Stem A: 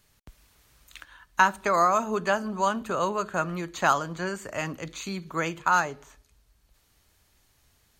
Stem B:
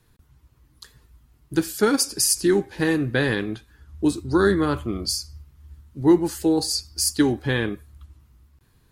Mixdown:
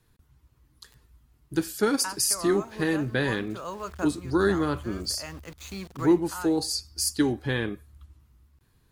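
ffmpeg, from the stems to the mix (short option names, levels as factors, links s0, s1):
-filter_complex "[0:a]aeval=exprs='val(0)*gte(abs(val(0)),0.0119)':c=same,adelay=650,volume=0.668[s0];[1:a]volume=0.596,asplit=2[s1][s2];[s2]apad=whole_len=381302[s3];[s0][s3]sidechaincompress=threshold=0.0282:ratio=12:attack=22:release=1030[s4];[s4][s1]amix=inputs=2:normalize=0"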